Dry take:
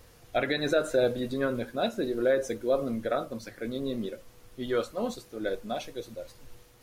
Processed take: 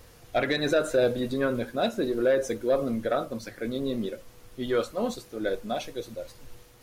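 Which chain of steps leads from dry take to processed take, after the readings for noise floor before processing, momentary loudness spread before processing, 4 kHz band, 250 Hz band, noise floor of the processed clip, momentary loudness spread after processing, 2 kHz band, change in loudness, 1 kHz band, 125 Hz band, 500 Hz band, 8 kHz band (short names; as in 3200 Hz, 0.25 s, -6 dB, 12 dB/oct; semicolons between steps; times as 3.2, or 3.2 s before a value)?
-56 dBFS, 13 LU, +2.0 dB, +2.5 dB, -53 dBFS, 13 LU, +2.0 dB, +2.0 dB, +2.0 dB, +2.5 dB, +2.0 dB, +3.0 dB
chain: soft clip -16.5 dBFS, distortion -22 dB; gain +3 dB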